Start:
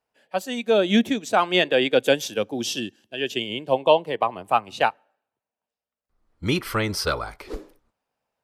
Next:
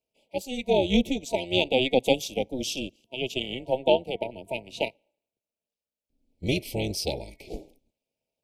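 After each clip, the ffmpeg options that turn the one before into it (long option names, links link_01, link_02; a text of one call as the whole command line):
ffmpeg -i in.wav -af "afftfilt=real='re*(1-between(b*sr/4096,680,2200))':imag='im*(1-between(b*sr/4096,680,2200))':win_size=4096:overlap=0.75,tremolo=f=260:d=0.75" out.wav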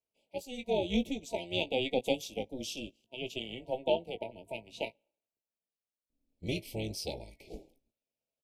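ffmpeg -i in.wav -filter_complex "[0:a]asplit=2[link_01][link_02];[link_02]adelay=18,volume=-10dB[link_03];[link_01][link_03]amix=inputs=2:normalize=0,volume=-9dB" out.wav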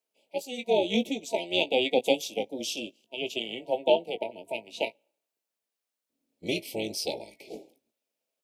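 ffmpeg -i in.wav -af "highpass=260,volume=7dB" out.wav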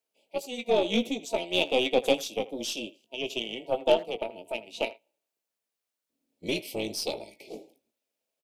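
ffmpeg -i in.wav -filter_complex "[0:a]aeval=exprs='0.422*(cos(1*acos(clip(val(0)/0.422,-1,1)))-cos(1*PI/2))+0.0188*(cos(6*acos(clip(val(0)/0.422,-1,1)))-cos(6*PI/2))+0.0266*(cos(8*acos(clip(val(0)/0.422,-1,1)))-cos(8*PI/2))':channel_layout=same,asplit=2[link_01][link_02];[link_02]adelay=80,highpass=300,lowpass=3400,asoftclip=type=hard:threshold=-17dB,volume=-18dB[link_03];[link_01][link_03]amix=inputs=2:normalize=0" out.wav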